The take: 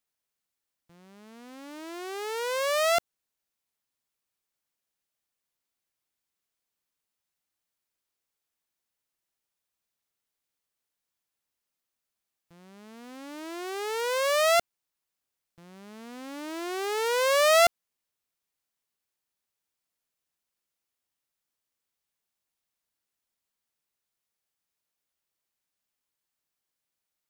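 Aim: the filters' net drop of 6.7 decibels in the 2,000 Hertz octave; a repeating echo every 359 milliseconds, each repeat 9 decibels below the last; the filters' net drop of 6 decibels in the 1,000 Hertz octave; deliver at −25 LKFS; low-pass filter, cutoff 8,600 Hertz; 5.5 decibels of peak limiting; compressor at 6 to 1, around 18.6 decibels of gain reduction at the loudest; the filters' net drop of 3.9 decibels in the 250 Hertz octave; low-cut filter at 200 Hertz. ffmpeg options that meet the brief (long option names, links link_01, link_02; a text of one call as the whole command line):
ffmpeg -i in.wav -af "highpass=200,lowpass=8600,equalizer=frequency=250:width_type=o:gain=-4,equalizer=frequency=1000:width_type=o:gain=-6.5,equalizer=frequency=2000:width_type=o:gain=-6.5,acompressor=threshold=-42dB:ratio=6,alimiter=level_in=14.5dB:limit=-24dB:level=0:latency=1,volume=-14.5dB,aecho=1:1:359|718|1077|1436:0.355|0.124|0.0435|0.0152,volume=24.5dB" out.wav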